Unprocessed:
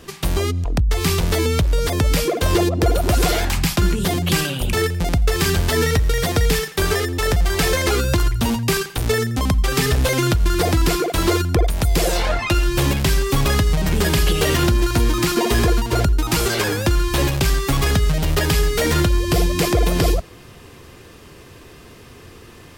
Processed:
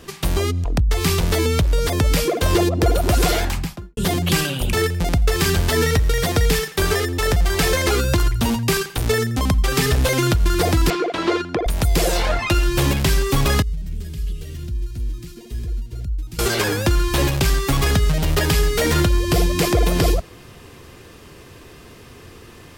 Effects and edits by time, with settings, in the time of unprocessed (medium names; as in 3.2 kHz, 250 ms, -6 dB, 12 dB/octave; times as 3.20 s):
3.34–3.97 s: studio fade out
10.90–11.66 s: band-pass 240–3600 Hz
13.62–16.39 s: amplifier tone stack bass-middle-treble 10-0-1